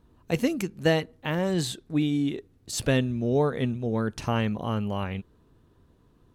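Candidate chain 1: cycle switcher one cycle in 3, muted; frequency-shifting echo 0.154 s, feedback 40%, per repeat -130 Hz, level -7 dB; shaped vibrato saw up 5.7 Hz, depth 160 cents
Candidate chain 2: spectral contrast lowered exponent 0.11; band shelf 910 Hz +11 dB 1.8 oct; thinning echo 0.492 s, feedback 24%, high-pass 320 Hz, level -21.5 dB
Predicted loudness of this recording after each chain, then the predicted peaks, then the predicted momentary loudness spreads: -28.5, -23.0 LUFS; -10.0, -2.0 dBFS; 8, 7 LU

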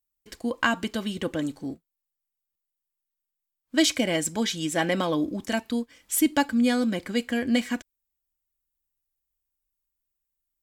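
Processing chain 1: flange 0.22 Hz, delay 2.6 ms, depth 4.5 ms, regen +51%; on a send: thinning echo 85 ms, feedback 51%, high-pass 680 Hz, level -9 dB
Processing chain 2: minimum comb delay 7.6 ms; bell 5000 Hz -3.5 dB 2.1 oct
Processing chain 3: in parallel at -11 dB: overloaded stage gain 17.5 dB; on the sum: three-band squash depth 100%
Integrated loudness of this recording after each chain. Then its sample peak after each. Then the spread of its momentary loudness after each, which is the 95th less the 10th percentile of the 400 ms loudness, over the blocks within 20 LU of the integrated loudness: -30.0, -28.5, -24.0 LUFS; -11.5, -10.0, -2.5 dBFS; 11, 10, 6 LU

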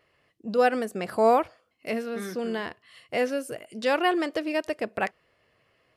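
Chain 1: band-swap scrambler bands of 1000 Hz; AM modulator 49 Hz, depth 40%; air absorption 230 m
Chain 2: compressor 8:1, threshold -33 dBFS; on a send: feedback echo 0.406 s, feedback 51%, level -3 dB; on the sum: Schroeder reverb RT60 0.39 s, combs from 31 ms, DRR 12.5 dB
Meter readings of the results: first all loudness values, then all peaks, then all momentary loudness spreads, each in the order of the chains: -30.0, -36.0 LUFS; -12.0, -21.0 dBFS; 13, 5 LU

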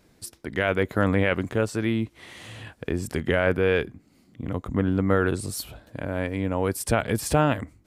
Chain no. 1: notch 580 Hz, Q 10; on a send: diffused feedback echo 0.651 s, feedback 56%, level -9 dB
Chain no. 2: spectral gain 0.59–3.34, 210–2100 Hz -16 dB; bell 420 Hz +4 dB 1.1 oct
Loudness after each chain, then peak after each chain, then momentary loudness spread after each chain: -26.0, -25.0 LUFS; -9.0, -6.5 dBFS; 9, 17 LU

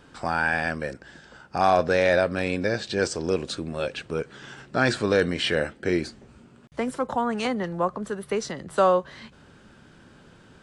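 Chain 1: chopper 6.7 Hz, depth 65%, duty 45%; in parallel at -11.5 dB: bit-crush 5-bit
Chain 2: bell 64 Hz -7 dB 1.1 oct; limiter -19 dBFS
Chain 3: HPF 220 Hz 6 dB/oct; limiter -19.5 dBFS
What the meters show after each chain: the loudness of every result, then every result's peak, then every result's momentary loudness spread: -26.0, -31.0, -31.5 LUFS; -5.5, -19.0, -19.5 dBFS; 14, 11, 11 LU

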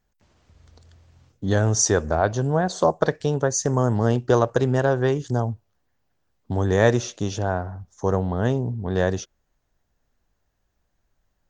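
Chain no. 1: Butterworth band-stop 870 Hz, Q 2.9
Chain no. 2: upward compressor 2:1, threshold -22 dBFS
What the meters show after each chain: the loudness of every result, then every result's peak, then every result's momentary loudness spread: -23.0, -22.5 LUFS; -4.5, -2.5 dBFS; 10, 19 LU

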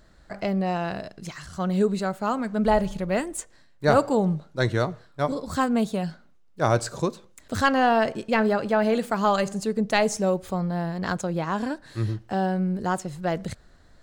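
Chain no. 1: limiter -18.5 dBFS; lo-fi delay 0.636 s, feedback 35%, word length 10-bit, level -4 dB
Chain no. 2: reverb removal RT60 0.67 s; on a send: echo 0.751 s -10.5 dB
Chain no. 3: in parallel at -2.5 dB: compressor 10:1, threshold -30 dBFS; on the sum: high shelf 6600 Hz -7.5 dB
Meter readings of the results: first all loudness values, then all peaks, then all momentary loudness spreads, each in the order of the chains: -28.0, -26.0, -23.5 LUFS; -13.5, -7.0, -6.5 dBFS; 5, 11, 9 LU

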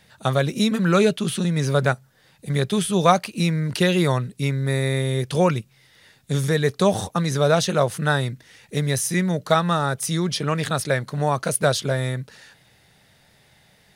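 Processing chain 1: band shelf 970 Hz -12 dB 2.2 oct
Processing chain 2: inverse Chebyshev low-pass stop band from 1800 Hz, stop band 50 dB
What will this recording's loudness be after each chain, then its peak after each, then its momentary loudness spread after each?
-24.0, -23.5 LUFS; -7.5, -8.0 dBFS; 6, 6 LU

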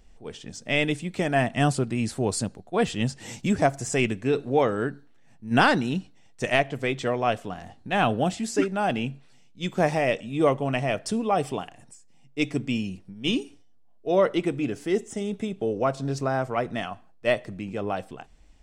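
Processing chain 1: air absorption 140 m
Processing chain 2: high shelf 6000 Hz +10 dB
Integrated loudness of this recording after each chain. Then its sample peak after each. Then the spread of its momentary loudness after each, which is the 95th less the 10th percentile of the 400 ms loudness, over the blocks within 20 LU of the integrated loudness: -27.0, -25.5 LUFS; -8.0, -5.5 dBFS; 12, 12 LU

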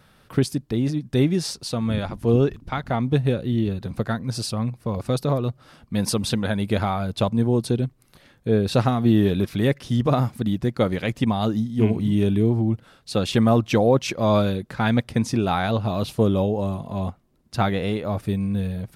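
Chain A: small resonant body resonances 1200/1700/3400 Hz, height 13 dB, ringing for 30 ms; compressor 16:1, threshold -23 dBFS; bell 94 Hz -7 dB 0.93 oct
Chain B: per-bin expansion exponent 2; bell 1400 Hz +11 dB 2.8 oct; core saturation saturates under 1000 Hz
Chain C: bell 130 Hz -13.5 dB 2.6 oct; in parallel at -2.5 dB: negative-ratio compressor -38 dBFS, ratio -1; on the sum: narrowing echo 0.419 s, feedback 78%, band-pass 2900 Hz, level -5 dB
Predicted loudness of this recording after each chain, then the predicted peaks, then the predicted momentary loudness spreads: -30.0, -26.5, -27.0 LUFS; -11.0, -5.0, -8.5 dBFS; 4, 12, 7 LU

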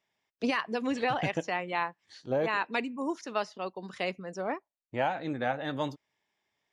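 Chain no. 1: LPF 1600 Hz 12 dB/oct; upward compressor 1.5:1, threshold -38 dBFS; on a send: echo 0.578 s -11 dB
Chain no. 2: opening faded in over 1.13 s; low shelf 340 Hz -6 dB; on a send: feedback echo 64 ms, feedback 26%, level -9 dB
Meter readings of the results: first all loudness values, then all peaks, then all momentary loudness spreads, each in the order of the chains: -33.5, -34.0 LUFS; -16.5, -15.0 dBFS; 10, 10 LU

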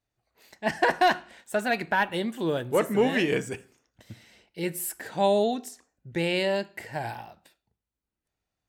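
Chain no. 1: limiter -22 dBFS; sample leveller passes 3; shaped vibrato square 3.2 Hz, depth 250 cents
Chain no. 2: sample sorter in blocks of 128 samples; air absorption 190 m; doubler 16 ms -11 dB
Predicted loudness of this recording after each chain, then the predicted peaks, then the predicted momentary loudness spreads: -27.5, -29.0 LUFS; -20.0, -12.0 dBFS; 13, 13 LU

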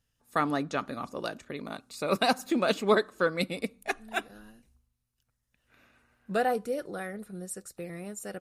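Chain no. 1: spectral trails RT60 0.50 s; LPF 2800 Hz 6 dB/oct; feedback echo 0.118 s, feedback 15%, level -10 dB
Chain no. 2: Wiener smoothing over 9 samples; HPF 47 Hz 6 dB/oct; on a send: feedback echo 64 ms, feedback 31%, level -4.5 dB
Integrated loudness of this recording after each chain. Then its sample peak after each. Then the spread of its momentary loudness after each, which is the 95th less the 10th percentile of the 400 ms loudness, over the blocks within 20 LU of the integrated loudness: -28.5, -30.0 LUFS; -10.5, -11.5 dBFS; 16, 15 LU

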